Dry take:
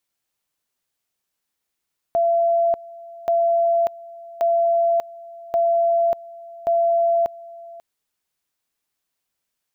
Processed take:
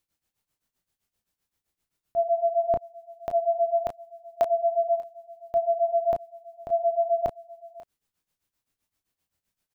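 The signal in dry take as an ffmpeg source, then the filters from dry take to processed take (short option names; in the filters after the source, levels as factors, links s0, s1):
-f lavfi -i "aevalsrc='pow(10,(-15-21*gte(mod(t,1.13),0.59))/20)*sin(2*PI*678*t)':d=5.65:s=44100"
-filter_complex "[0:a]lowshelf=f=230:g=12,tremolo=f=7.7:d=0.9,asplit=2[s0][s1];[s1]aecho=0:1:23|33:0.299|0.398[s2];[s0][s2]amix=inputs=2:normalize=0"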